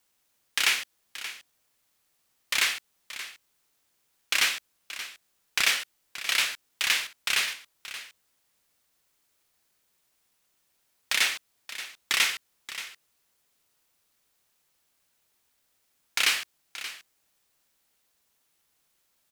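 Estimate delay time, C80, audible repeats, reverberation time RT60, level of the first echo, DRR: 578 ms, no reverb, 1, no reverb, -13.5 dB, no reverb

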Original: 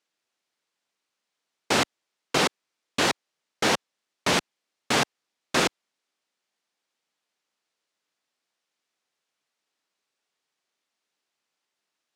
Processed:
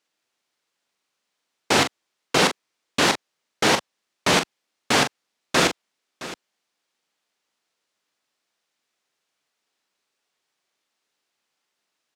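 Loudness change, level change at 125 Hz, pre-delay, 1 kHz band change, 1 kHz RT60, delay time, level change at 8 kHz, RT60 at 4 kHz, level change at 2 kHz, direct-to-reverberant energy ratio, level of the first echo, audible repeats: +4.0 dB, +4.5 dB, no reverb, +4.0 dB, no reverb, 41 ms, +4.0 dB, no reverb, +4.0 dB, no reverb, -8.5 dB, 2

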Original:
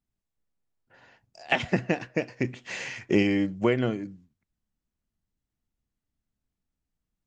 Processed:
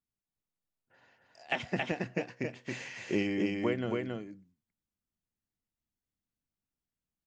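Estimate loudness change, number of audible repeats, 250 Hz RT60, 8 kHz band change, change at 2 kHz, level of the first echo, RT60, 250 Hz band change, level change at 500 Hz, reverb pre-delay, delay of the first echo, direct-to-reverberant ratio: -7.0 dB, 1, no reverb, no reading, -6.0 dB, -3.0 dB, no reverb, -6.5 dB, -6.5 dB, no reverb, 274 ms, no reverb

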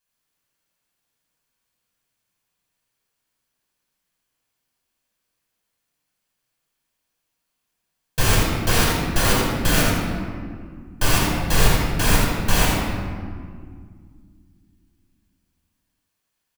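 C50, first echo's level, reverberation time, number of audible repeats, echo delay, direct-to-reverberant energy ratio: -2.0 dB, -5.0 dB, 2.1 s, 1, 84 ms, -4.5 dB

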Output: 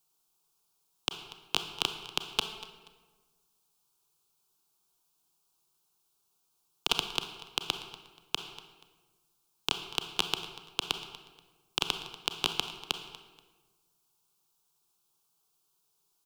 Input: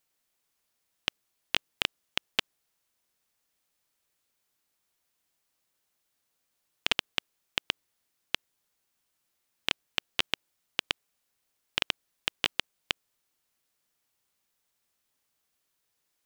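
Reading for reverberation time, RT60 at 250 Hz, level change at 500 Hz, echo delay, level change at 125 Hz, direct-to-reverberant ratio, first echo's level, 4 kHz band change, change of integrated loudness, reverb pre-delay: 1.3 s, 1.5 s, +1.5 dB, 240 ms, +3.0 dB, 7.0 dB, -17.5 dB, 0.0 dB, -0.5 dB, 29 ms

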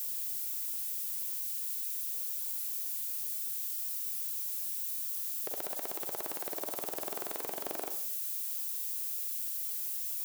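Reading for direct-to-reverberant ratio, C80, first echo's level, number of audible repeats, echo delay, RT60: 7.0 dB, 13.5 dB, no echo, no echo, no echo, 0.55 s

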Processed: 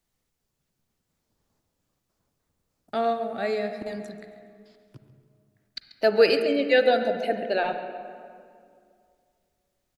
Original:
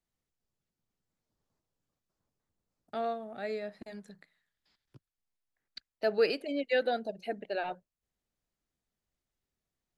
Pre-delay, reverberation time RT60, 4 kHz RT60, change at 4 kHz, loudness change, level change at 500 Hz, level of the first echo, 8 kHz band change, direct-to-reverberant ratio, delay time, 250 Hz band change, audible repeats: 39 ms, 2.3 s, 1.4 s, +10.0 dB, +9.0 dB, +9.5 dB, -15.5 dB, no reading, 7.0 dB, 137 ms, +9.5 dB, 1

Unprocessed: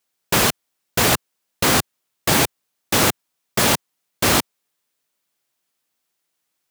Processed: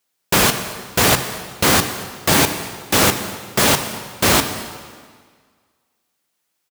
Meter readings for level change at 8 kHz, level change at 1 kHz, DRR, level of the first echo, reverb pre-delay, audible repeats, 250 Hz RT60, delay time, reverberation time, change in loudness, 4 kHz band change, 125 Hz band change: +2.5 dB, +2.5 dB, 7.0 dB, -21.5 dB, 7 ms, 1, 1.7 s, 229 ms, 1.7 s, +2.0 dB, +2.5 dB, +2.5 dB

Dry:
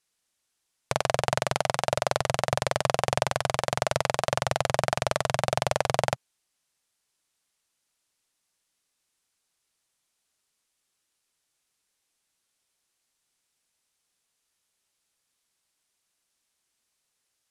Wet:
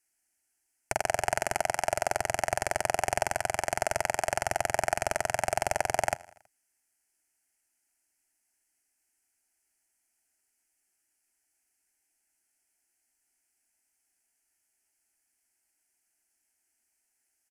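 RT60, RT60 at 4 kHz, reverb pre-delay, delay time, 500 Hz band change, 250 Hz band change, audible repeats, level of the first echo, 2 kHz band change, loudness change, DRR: no reverb, no reverb, no reverb, 81 ms, -3.5 dB, -6.5 dB, 3, -22.0 dB, -0.5 dB, -2.5 dB, no reverb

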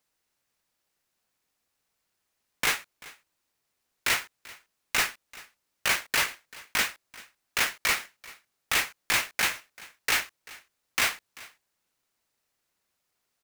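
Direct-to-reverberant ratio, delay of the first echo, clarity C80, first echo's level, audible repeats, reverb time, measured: no reverb, 388 ms, no reverb, -21.0 dB, 1, no reverb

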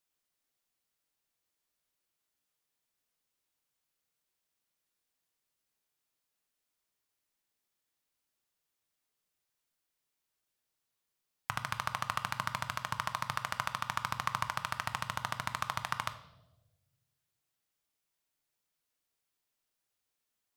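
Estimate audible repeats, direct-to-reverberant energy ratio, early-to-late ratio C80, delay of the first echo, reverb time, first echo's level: no echo, 9.0 dB, 15.0 dB, no echo, 1.1 s, no echo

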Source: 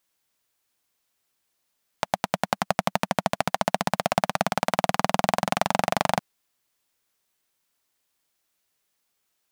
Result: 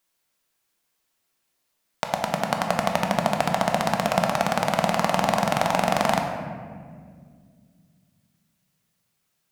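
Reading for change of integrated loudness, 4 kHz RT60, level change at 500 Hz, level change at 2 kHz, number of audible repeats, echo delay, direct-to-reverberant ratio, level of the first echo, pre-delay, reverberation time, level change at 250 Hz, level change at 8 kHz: +2.0 dB, 1.0 s, +3.5 dB, +2.0 dB, no echo, no echo, 2.0 dB, no echo, 3 ms, 1.9 s, +3.5 dB, +1.0 dB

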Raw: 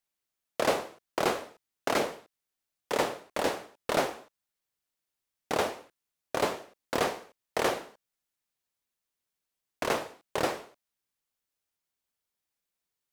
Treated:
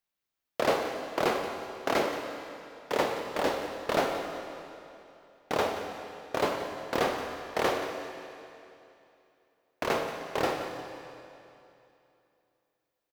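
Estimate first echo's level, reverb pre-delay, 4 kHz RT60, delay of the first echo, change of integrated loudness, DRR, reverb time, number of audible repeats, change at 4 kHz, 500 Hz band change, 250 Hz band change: -13.5 dB, 24 ms, 2.6 s, 178 ms, 0.0 dB, 4.0 dB, 2.8 s, 1, 0.0 dB, +1.5 dB, +1.5 dB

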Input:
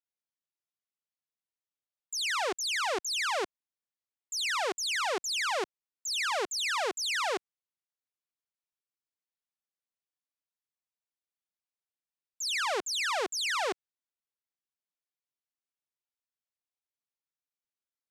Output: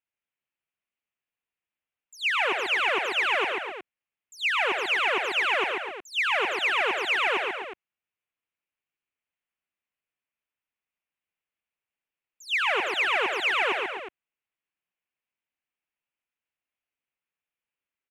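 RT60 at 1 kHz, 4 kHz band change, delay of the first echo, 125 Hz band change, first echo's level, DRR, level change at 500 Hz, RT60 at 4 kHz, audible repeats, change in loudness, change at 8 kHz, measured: no reverb, +2.5 dB, 74 ms, no reading, -14.5 dB, no reverb, +4.5 dB, no reverb, 4, +6.0 dB, -11.5 dB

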